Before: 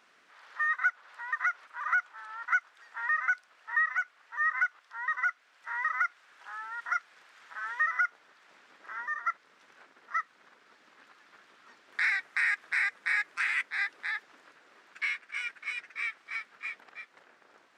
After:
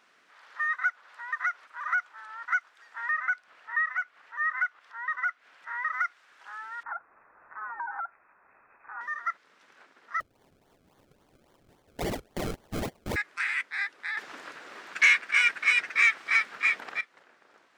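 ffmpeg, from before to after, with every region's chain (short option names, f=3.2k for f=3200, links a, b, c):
-filter_complex "[0:a]asettb=1/sr,asplit=3[a][b][c];[a]atrim=end=3.114[d];[b]atrim=start=3.11:end=5.93,asetpts=PTS-STARTPTS,afade=t=in:d=0.004:c=qsin,afade=t=out:st=2.816:d=0.004:c=qsin,bass=f=250:g=2,treble=f=4k:g=-7,acompressor=mode=upward:threshold=-48dB:ratio=2.5:attack=3.2:release=140:knee=2.83:detection=peak[e];[c]atrim=start=5.926[f];[d][e]acrossfade=d=0.004:c1=hsin:c2=qsin[g];[g][f]acrossfade=d=0.004:c1=qsin:c2=hsin,asettb=1/sr,asplit=3[h][i][j];[h]atrim=end=6.834[k];[i]atrim=start=6.83:end=9.01,asetpts=PTS-STARTPTS,afade=t=in:d=0.004:c=qsin,afade=t=out:st=2.176:d=0.004:c=qsin,equalizer=f=550:t=o:w=0.75:g=-10,acompressor=threshold=-31dB:ratio=6:attack=3.2:release=140:knee=1:detection=peak,lowpass=f=2.4k:t=q:w=0.5098,lowpass=f=2.4k:t=q:w=0.6013,lowpass=f=2.4k:t=q:w=0.9,lowpass=f=2.4k:t=q:w=2.563,afreqshift=-2800[l];[j]atrim=start=9.006[m];[k][l]acrossfade=d=0.004:c1=hsin:c2=qsin[n];[n][m]acrossfade=d=0.004:c1=qsin:c2=hsin,asettb=1/sr,asplit=3[o][p][q];[o]atrim=end=10.204[r];[p]atrim=start=10.2:end=13.16,asetpts=PTS-STARTPTS,afade=t=in:d=0.004:c=qsin,afade=t=out:st=2.956:d=0.004:c=qsin,asuperstop=centerf=1400:order=4:qfactor=1.4,acrusher=samples=33:mix=1:aa=0.000001:lfo=1:lforange=33:lforate=3.6[s];[q]atrim=start=13.156[t];[r][s]acrossfade=d=0.004:c1=hsin:c2=qsin[u];[u][t]acrossfade=d=0.004:c1=qsin:c2=hsin,asettb=1/sr,asplit=3[v][w][x];[v]atrim=end=14.174[y];[w]atrim=start=14.17:end=17.01,asetpts=PTS-STARTPTS,afade=t=in:d=0.004:c=qsin,afade=t=out:st=2.836:d=0.004:c=qsin,acontrast=78,aeval=exprs='0.237*sin(PI/2*1.41*val(0)/0.237)':c=same[z];[x]atrim=start=17.006[aa];[y][z]acrossfade=d=0.004:c1=hsin:c2=qsin[ab];[ab][aa]acrossfade=d=0.004:c1=qsin:c2=hsin"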